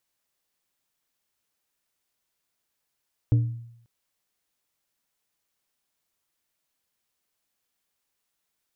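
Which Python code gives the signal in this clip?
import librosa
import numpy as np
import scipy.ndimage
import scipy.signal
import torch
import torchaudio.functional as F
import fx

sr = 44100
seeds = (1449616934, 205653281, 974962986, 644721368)

y = fx.strike_glass(sr, length_s=0.54, level_db=-14, body='plate', hz=117.0, decay_s=0.73, tilt_db=11.5, modes=5)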